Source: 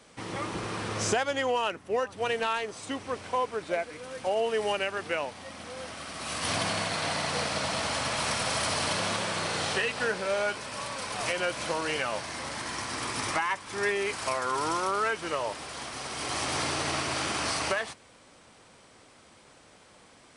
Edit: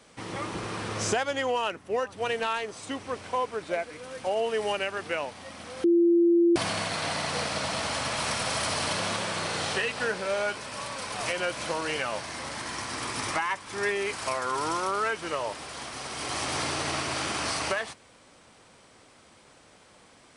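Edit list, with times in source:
5.84–6.56 s: bleep 342 Hz -17 dBFS

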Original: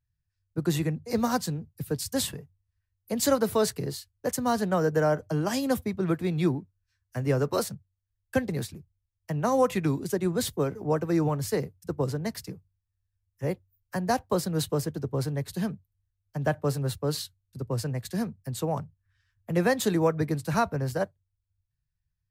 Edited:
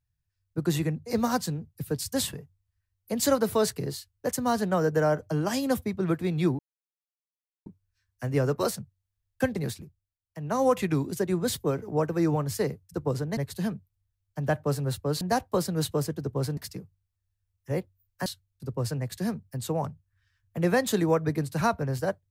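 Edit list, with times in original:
6.59 s: insert silence 1.07 s
8.71–9.56 s: dip -13.5 dB, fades 0.33 s
12.30–13.99 s: swap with 15.35–17.19 s

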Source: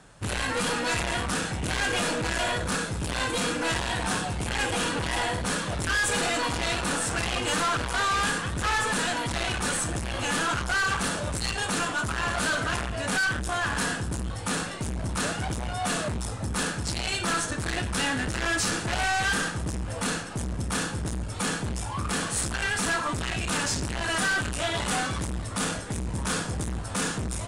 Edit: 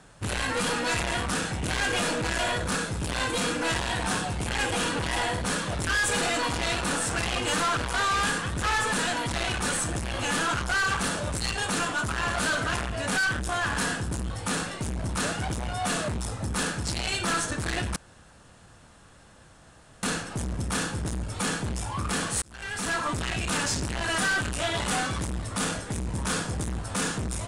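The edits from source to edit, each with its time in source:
17.96–20.03 s: room tone
22.42–23.04 s: fade in

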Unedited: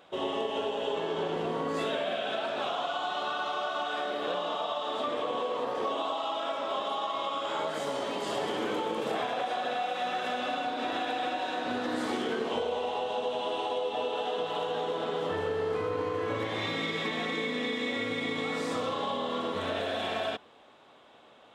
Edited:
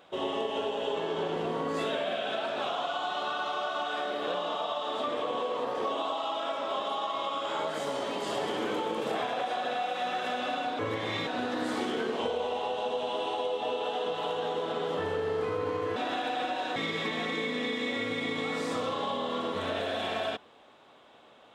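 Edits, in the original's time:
10.79–11.59 s: swap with 16.28–16.76 s

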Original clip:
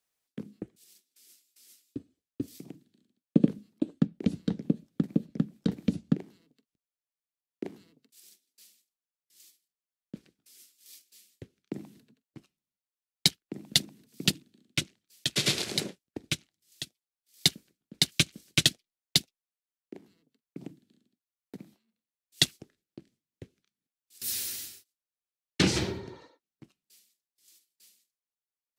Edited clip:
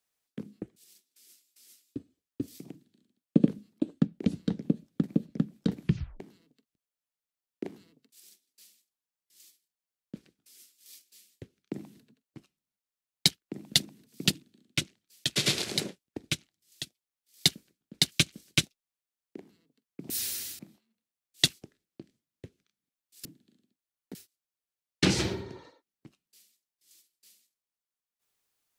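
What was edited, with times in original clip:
5.80 s: tape stop 0.40 s
18.63–19.20 s: delete
20.67–21.57 s: swap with 24.23–24.72 s

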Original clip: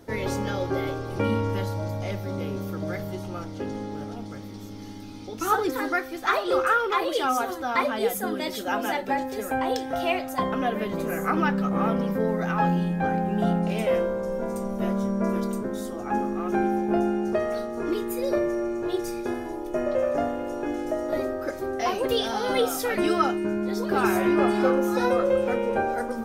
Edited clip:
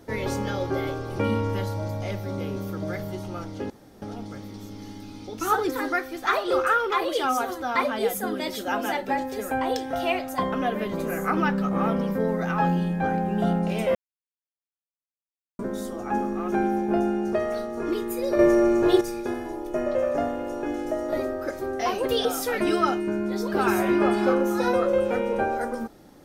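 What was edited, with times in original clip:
3.70–4.02 s: room tone
13.95–15.59 s: mute
18.39–19.01 s: gain +8.5 dB
22.25–22.62 s: delete

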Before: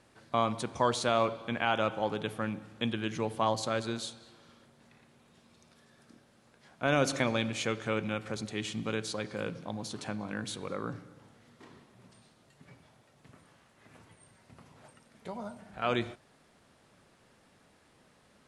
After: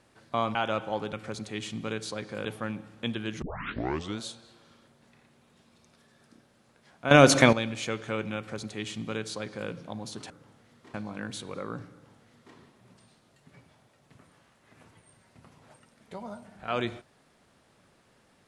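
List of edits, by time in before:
0.55–1.65 s: delete
3.20 s: tape start 0.78 s
6.89–7.31 s: gain +11 dB
8.15–9.47 s: copy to 2.23 s
11.06–11.70 s: copy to 10.08 s

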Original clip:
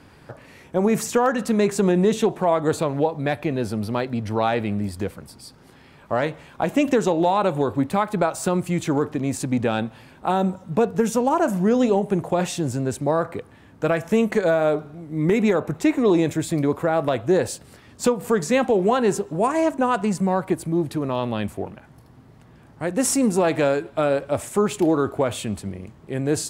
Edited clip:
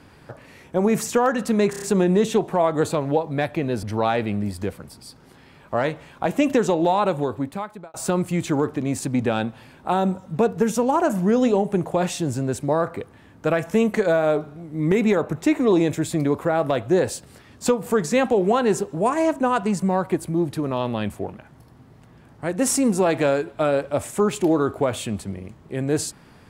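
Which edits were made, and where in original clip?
1.70 s: stutter 0.03 s, 5 plays
3.71–4.21 s: delete
7.41–8.32 s: fade out

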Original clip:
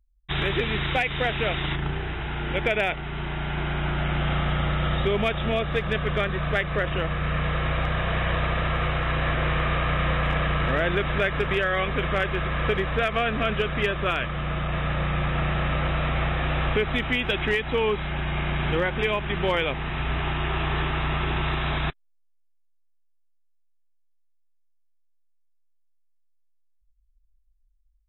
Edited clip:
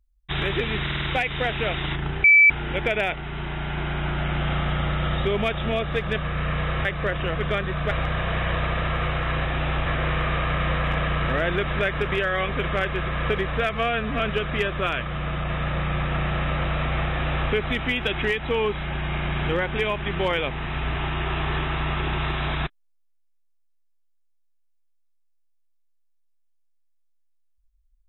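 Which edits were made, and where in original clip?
0.83 s: stutter 0.05 s, 5 plays
2.04–2.30 s: bleep 2.31 kHz -10 dBFS
6.02–6.57 s: swap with 7.08–7.71 s
13.12–13.43 s: stretch 1.5×
16.34–16.75 s: copy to 9.25 s

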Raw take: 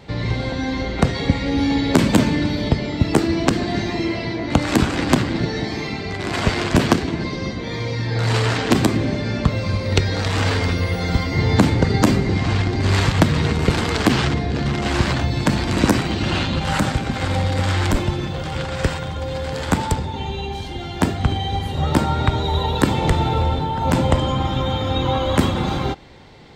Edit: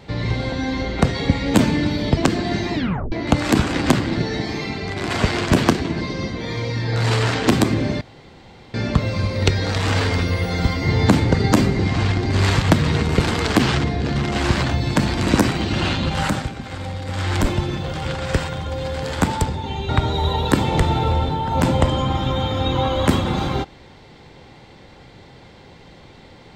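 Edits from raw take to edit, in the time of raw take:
1.54–2.13 s: delete
2.76–3.40 s: delete
3.97 s: tape stop 0.38 s
9.24 s: insert room tone 0.73 s
16.69–17.93 s: dip -8.5 dB, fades 0.37 s
20.39–22.19 s: delete

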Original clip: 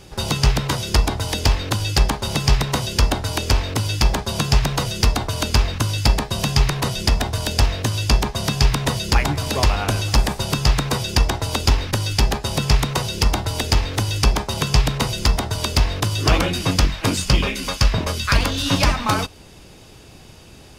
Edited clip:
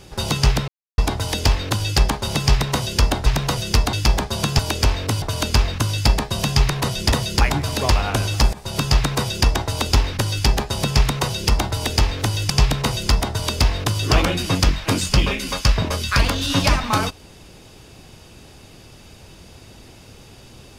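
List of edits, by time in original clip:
0.68–0.98 s: mute
3.26–3.89 s: swap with 4.55–5.22 s
7.12–8.86 s: delete
10.27–10.55 s: fade in, from -22.5 dB
14.24–14.66 s: delete

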